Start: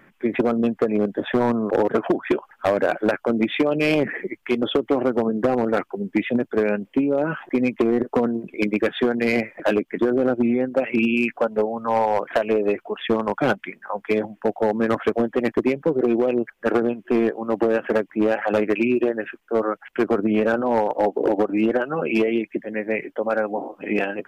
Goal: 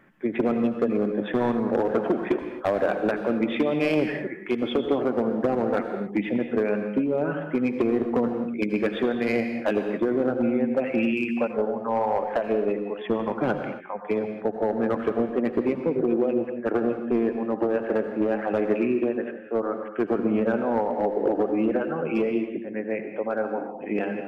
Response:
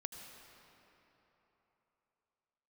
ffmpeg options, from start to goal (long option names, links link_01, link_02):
-filter_complex "[0:a]asetnsamples=nb_out_samples=441:pad=0,asendcmd='11.24 highshelf g -11',highshelf=frequency=2100:gain=-4.5[link_01];[1:a]atrim=start_sample=2205,afade=type=out:start_time=0.33:duration=0.01,atrim=end_sample=14994[link_02];[link_01][link_02]afir=irnorm=-1:irlink=0"